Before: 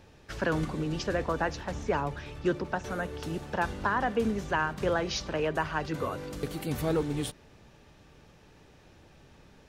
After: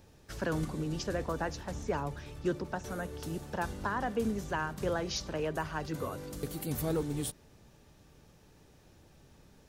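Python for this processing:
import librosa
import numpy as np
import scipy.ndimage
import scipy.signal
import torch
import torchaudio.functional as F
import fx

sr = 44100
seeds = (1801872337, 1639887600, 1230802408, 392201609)

y = fx.curve_eq(x, sr, hz=(160.0, 2600.0, 14000.0), db=(0, -5, 9))
y = y * 10.0 ** (-2.5 / 20.0)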